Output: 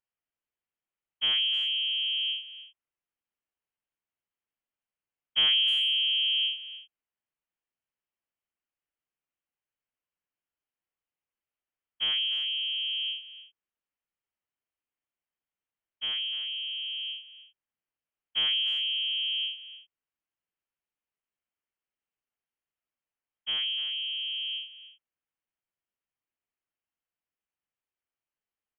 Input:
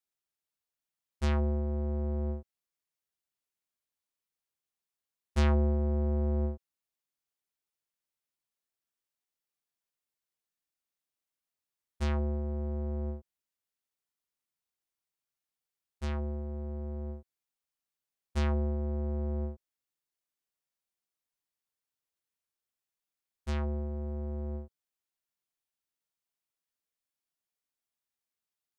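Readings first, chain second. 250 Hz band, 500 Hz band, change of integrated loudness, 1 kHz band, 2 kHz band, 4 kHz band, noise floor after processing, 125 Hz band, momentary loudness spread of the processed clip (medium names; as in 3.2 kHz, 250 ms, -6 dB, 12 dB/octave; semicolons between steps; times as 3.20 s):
under -25 dB, under -20 dB, +6.5 dB, -8.5 dB, +12.0 dB, +30.5 dB, under -85 dBFS, under -35 dB, 15 LU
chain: frequency inversion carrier 3.2 kHz; speakerphone echo 300 ms, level -12 dB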